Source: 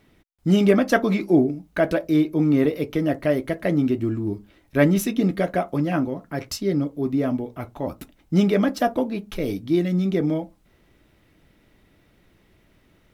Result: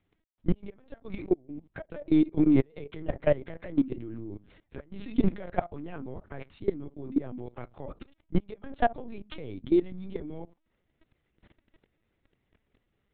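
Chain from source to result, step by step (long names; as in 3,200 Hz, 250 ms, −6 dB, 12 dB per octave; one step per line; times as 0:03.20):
gate with flip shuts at −9 dBFS, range −29 dB
linear-prediction vocoder at 8 kHz pitch kept
output level in coarse steps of 19 dB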